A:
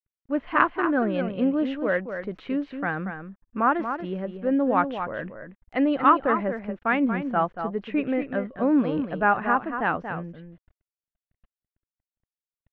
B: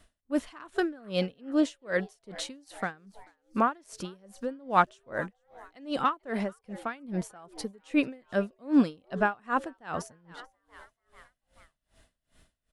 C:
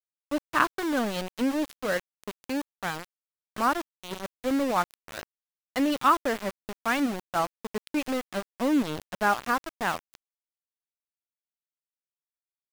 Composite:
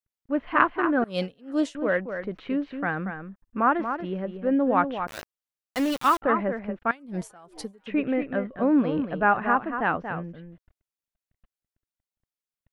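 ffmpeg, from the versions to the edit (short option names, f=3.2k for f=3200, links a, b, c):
-filter_complex "[1:a]asplit=2[a][b];[0:a]asplit=4[c][d][e][f];[c]atrim=end=1.042[g];[a]atrim=start=1.038:end=1.752[h];[d]atrim=start=1.748:end=5.072[i];[2:a]atrim=start=5.068:end=6.222[j];[e]atrim=start=6.218:end=6.912[k];[b]atrim=start=6.908:end=7.862[l];[f]atrim=start=7.858[m];[g][h]acrossfade=d=0.004:c1=hsin:c2=hsin[n];[n][i]acrossfade=d=0.004:c1=hsin:c2=hsin[o];[o][j]acrossfade=d=0.004:c1=hsin:c2=hsin[p];[p][k]acrossfade=d=0.004:c1=hsin:c2=hsin[q];[q][l]acrossfade=d=0.004:c1=hsin:c2=hsin[r];[r][m]acrossfade=d=0.004:c1=hsin:c2=hsin"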